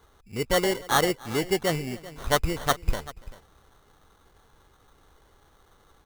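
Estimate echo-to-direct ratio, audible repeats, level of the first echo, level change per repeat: -16.5 dB, 2, -22.5 dB, no steady repeat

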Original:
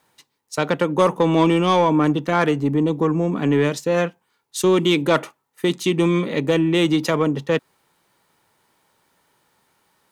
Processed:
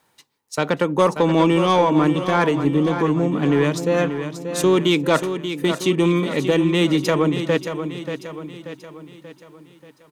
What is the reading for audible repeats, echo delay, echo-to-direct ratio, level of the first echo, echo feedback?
5, 0.584 s, -8.0 dB, -9.0 dB, 49%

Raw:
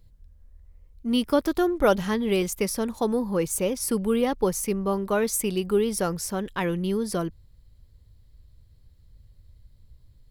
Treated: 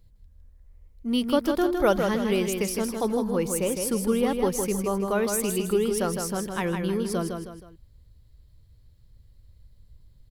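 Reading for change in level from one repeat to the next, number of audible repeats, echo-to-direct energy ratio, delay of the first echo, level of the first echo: -8.0 dB, 3, -5.0 dB, 0.158 s, -5.5 dB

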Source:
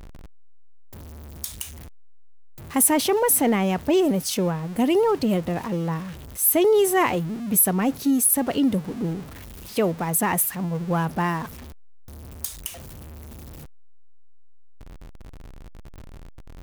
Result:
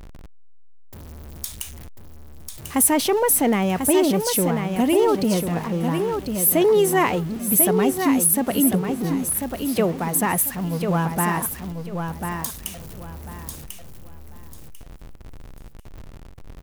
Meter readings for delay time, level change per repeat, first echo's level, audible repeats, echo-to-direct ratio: 1.044 s, -12.0 dB, -6.0 dB, 3, -5.5 dB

